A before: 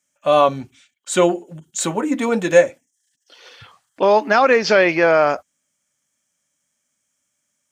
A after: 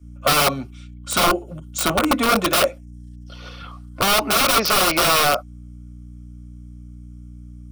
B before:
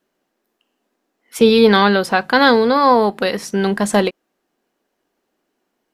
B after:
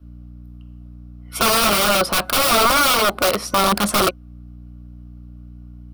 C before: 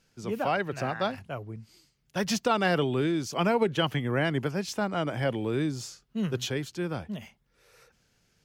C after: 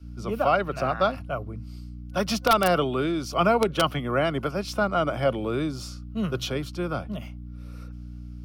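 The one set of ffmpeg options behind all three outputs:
-filter_complex "[0:a]aeval=exprs='val(0)+0.0112*(sin(2*PI*60*n/s)+sin(2*PI*2*60*n/s)/2+sin(2*PI*3*60*n/s)/3+sin(2*PI*4*60*n/s)/4+sin(2*PI*5*60*n/s)/5)':c=same,adynamicequalizer=threshold=0.0178:dfrequency=110:dqfactor=0.72:tfrequency=110:tqfactor=0.72:attack=5:release=100:ratio=0.375:range=3.5:mode=cutabove:tftype=bell,acrossover=split=150[a][b];[b]aeval=exprs='(mod(5.31*val(0)+1,2)-1)/5.31':c=same[c];[a][c]amix=inputs=2:normalize=0,superequalizer=8b=1.78:10b=2.24:11b=0.562:15b=0.501,volume=2dB"

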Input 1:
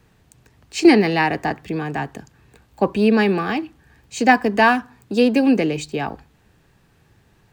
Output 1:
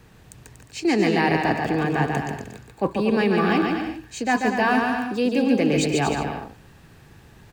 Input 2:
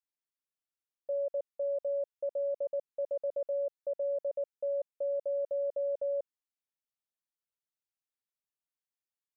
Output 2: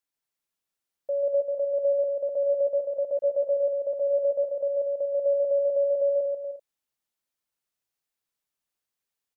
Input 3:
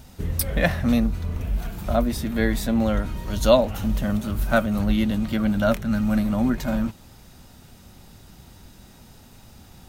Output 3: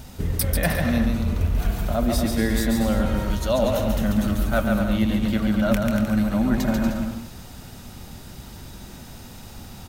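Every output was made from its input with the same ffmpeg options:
-af "areverse,acompressor=threshold=-25dB:ratio=6,areverse,aecho=1:1:140|238|306.6|354.6|388.2:0.631|0.398|0.251|0.158|0.1,volume=5.5dB"

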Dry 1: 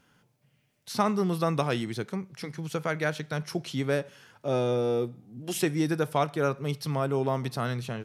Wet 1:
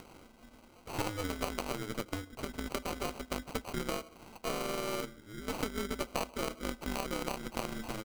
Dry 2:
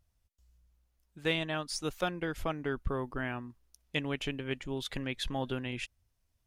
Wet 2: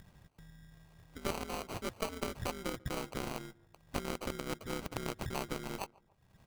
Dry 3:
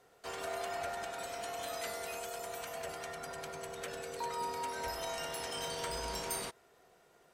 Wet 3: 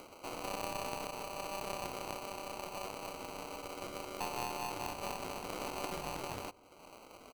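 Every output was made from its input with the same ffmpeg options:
-filter_complex "[0:a]aeval=exprs='val(0)*sin(2*PI*100*n/s)':c=same,highshelf=f=4.5k:g=-4,acrusher=samples=25:mix=1:aa=0.000001,lowshelf=f=370:g=-6,acompressor=threshold=-37dB:ratio=6,asplit=2[a][b];[b]adelay=142,lowpass=f=1.3k:p=1,volume=-22.5dB,asplit=2[c][d];[d]adelay=142,lowpass=f=1.3k:p=1,volume=0.25[e];[c][e]amix=inputs=2:normalize=0[f];[a][f]amix=inputs=2:normalize=0,acompressor=mode=upward:threshold=-45dB:ratio=2.5,aeval=exprs='0.0944*(cos(1*acos(clip(val(0)/0.0944,-1,1)))-cos(1*PI/2))+0.00841*(cos(3*acos(clip(val(0)/0.0944,-1,1)))-cos(3*PI/2))+0.00944*(cos(6*acos(clip(val(0)/0.0944,-1,1)))-cos(6*PI/2))':c=same,volume=6.5dB"

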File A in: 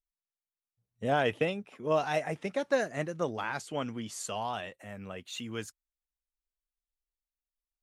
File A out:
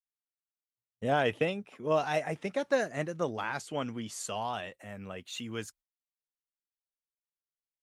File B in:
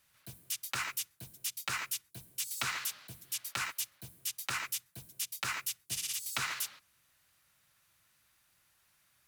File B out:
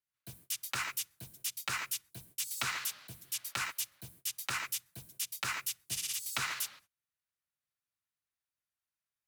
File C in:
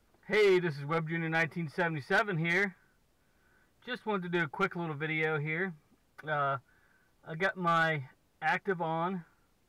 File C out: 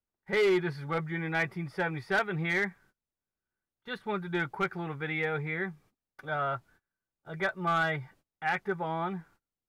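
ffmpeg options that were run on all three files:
-af "agate=range=-25dB:threshold=-58dB:ratio=16:detection=peak"

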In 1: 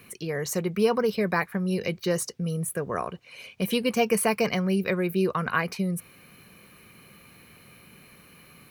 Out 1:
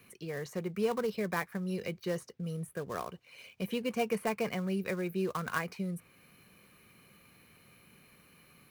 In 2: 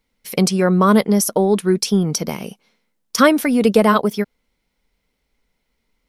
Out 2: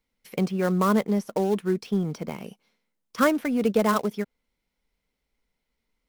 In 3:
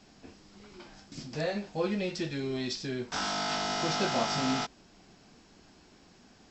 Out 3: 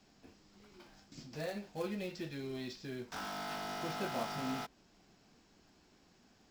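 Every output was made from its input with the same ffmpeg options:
-filter_complex "[0:a]acrossover=split=580|3000[a][b][c];[b]acrusher=bits=2:mode=log:mix=0:aa=0.000001[d];[c]acompressor=threshold=-44dB:ratio=6[e];[a][d][e]amix=inputs=3:normalize=0,volume=-8.5dB"

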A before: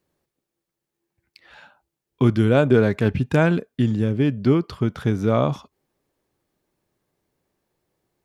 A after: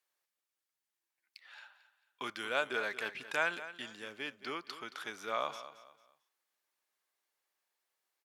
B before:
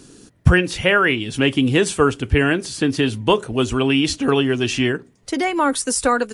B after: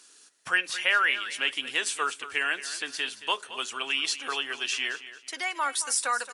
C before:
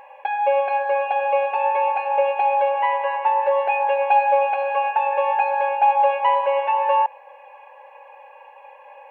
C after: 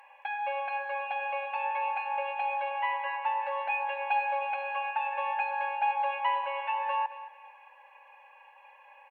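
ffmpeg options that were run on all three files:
-af "highpass=1.2k,aecho=1:1:223|446|669:0.2|0.0619|0.0192,volume=-4.5dB" -ar 48000 -c:a libopus -b:a 192k

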